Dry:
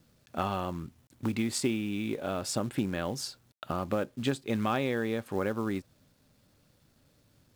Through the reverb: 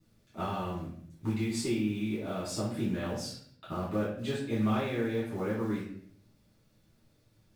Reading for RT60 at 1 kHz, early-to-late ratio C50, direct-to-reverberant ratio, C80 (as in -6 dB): 0.55 s, 3.0 dB, -12.5 dB, 6.5 dB